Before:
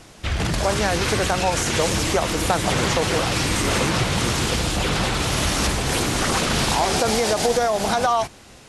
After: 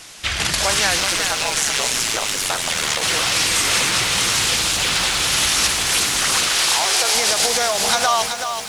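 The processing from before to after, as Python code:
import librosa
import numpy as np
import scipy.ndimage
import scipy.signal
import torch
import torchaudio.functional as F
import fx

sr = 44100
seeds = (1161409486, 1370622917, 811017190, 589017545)

y = fx.tilt_shelf(x, sr, db=-9.5, hz=970.0)
y = fx.rider(y, sr, range_db=4, speed_s=2.0)
y = fx.ring_mod(y, sr, carrier_hz=fx.line((1.0, 98.0), (3.01, 35.0)), at=(1.0, 3.01), fade=0.02)
y = fx.brickwall_highpass(y, sr, low_hz=300.0, at=(6.49, 7.15))
y = fx.echo_crushed(y, sr, ms=378, feedback_pct=55, bits=6, wet_db=-7)
y = y * 10.0 ** (-1.0 / 20.0)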